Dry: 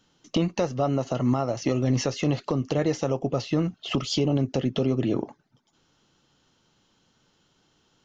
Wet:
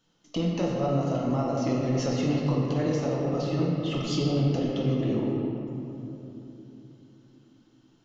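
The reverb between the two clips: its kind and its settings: simulated room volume 170 m³, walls hard, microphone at 0.69 m; trim -7.5 dB

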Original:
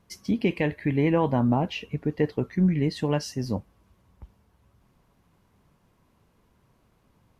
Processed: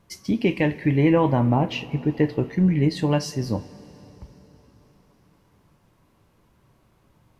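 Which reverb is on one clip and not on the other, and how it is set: two-slope reverb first 0.24 s, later 4.3 s, from -20 dB, DRR 9 dB; trim +3 dB

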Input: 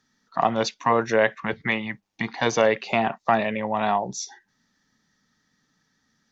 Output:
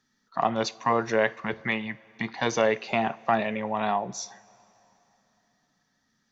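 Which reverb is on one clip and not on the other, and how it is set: two-slope reverb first 0.27 s, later 3.3 s, from -18 dB, DRR 15 dB; trim -3.5 dB

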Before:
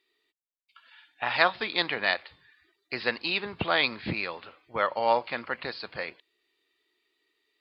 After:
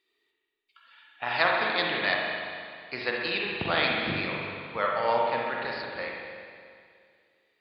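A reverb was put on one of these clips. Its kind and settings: spring tank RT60 2.2 s, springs 41/60 ms, chirp 25 ms, DRR -2 dB; trim -3 dB

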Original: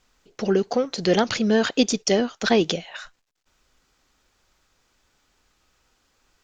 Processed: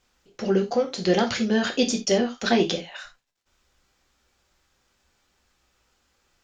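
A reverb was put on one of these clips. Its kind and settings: gated-style reverb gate 110 ms falling, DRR 2.5 dB; trim -3.5 dB

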